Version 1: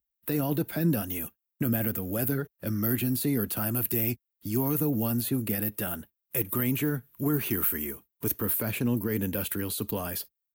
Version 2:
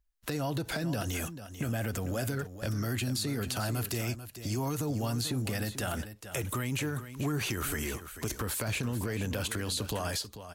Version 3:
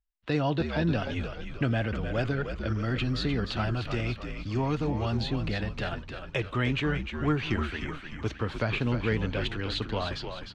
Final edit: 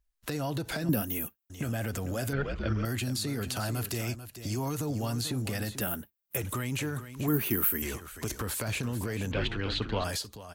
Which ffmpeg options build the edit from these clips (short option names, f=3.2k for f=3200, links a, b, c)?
-filter_complex "[0:a]asplit=3[a][b][c];[2:a]asplit=2[d][e];[1:a]asplit=6[f][g][h][i][j][k];[f]atrim=end=0.892[l];[a]atrim=start=0.888:end=1.502[m];[g]atrim=start=1.498:end=2.332[n];[d]atrim=start=2.328:end=2.852[o];[h]atrim=start=2.848:end=5.812[p];[b]atrim=start=5.808:end=6.372[q];[i]atrim=start=6.368:end=7.282[r];[c]atrim=start=7.278:end=7.822[s];[j]atrim=start=7.818:end=9.322[t];[e]atrim=start=9.318:end=10.042[u];[k]atrim=start=10.038[v];[l][m]acrossfade=d=0.004:c1=hsin:c2=hsin[w];[w][n]acrossfade=d=0.004:c1=hsin:c2=hsin[x];[x][o]acrossfade=d=0.004:c1=hsin:c2=hsin[y];[y][p]acrossfade=d=0.004:c1=hsin:c2=hsin[z];[z][q]acrossfade=d=0.004:c1=hsin:c2=hsin[aa];[aa][r]acrossfade=d=0.004:c1=hsin:c2=hsin[ab];[ab][s]acrossfade=d=0.004:c1=hsin:c2=hsin[ac];[ac][t]acrossfade=d=0.004:c1=hsin:c2=hsin[ad];[ad][u]acrossfade=d=0.004:c1=hsin:c2=hsin[ae];[ae][v]acrossfade=d=0.004:c1=hsin:c2=hsin"